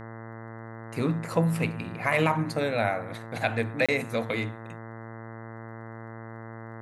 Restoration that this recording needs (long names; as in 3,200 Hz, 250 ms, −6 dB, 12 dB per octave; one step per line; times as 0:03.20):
click removal
hum removal 113.2 Hz, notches 18
repair the gap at 0:03.86, 26 ms